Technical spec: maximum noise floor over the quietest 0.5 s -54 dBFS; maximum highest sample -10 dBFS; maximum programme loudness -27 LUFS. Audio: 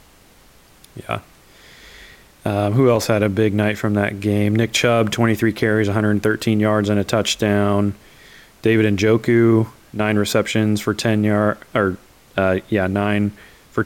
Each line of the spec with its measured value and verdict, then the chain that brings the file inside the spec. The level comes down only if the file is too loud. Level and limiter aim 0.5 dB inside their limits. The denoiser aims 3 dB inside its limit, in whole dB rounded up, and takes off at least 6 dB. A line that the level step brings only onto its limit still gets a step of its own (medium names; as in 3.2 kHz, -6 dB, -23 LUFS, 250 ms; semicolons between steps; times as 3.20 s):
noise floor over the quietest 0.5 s -50 dBFS: fail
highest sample -4.5 dBFS: fail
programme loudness -18.5 LUFS: fail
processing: trim -9 dB